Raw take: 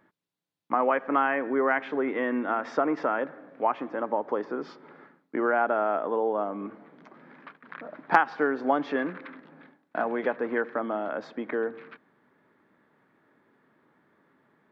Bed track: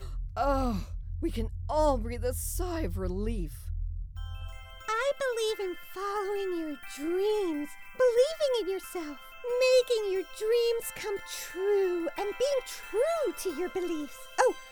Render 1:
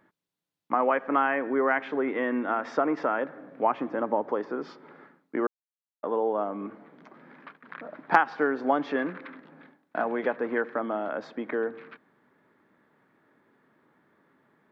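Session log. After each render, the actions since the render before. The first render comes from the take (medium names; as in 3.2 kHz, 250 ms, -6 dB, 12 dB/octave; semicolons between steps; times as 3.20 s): 3.35–4.32 s: bass shelf 290 Hz +7 dB; 5.47–6.03 s: mute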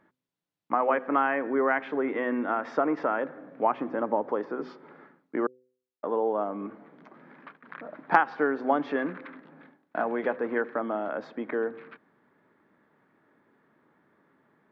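treble shelf 4.6 kHz -9 dB; de-hum 126.9 Hz, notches 4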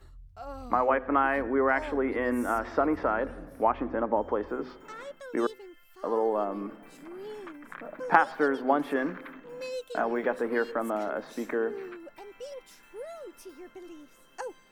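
add bed track -13.5 dB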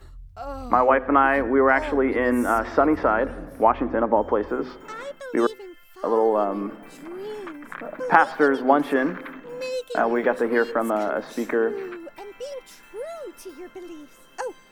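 trim +7 dB; peak limiter -1 dBFS, peak gain reduction 3 dB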